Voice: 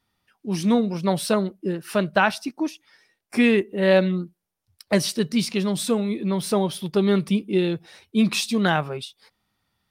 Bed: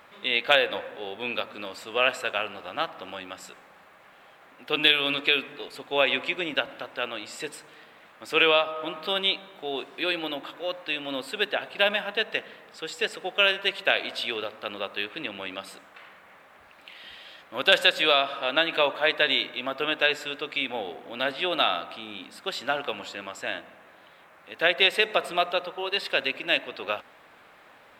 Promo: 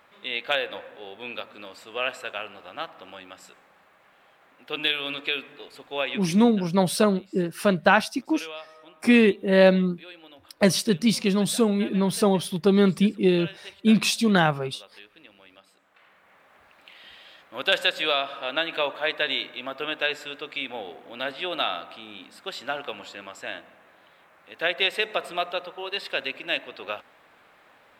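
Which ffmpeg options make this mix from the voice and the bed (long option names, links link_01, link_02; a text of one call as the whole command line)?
ffmpeg -i stem1.wav -i stem2.wav -filter_complex "[0:a]adelay=5700,volume=1dB[link_01];[1:a]volume=9.5dB,afade=type=out:start_time=6:duration=0.45:silence=0.237137,afade=type=in:start_time=15.74:duration=0.81:silence=0.188365[link_02];[link_01][link_02]amix=inputs=2:normalize=0" out.wav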